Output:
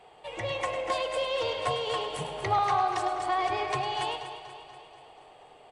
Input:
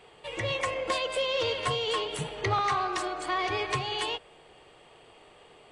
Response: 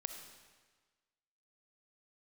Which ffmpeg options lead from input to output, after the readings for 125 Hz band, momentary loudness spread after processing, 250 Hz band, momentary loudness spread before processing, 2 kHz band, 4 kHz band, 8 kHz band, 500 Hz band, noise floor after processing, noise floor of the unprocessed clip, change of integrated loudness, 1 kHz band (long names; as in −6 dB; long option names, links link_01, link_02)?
−3.5 dB, 15 LU, −2.5 dB, 5 LU, −3.0 dB, −3.5 dB, −3.5 dB, 0.0 dB, −54 dBFS, −56 dBFS, 0.0 dB, +3.0 dB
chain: -filter_complex "[0:a]equalizer=frequency=760:width_type=o:width=0.67:gain=11,aecho=1:1:241|482|723|964|1205|1446|1687:0.266|0.154|0.0895|0.0519|0.0301|0.0175|0.0101,asplit=2[link_01][link_02];[1:a]atrim=start_sample=2205,adelay=103[link_03];[link_02][link_03]afir=irnorm=-1:irlink=0,volume=-9dB[link_04];[link_01][link_04]amix=inputs=2:normalize=0,volume=-4.5dB"